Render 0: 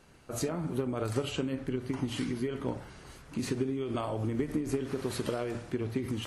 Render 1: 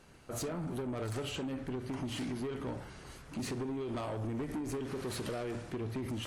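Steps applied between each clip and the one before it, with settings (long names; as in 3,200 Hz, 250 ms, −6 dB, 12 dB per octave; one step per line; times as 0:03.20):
soft clipping −33 dBFS, distortion −9 dB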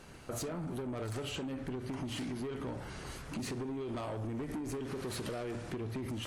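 downward compressor 4 to 1, threshold −44 dBFS, peak gain reduction 8 dB
level +6 dB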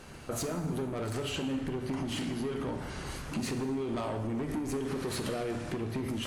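dense smooth reverb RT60 1.3 s, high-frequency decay 0.9×, DRR 7 dB
level +4 dB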